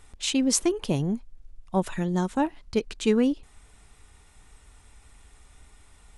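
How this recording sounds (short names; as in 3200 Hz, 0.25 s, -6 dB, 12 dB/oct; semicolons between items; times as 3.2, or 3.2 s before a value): noise floor -55 dBFS; spectral tilt -4.5 dB/oct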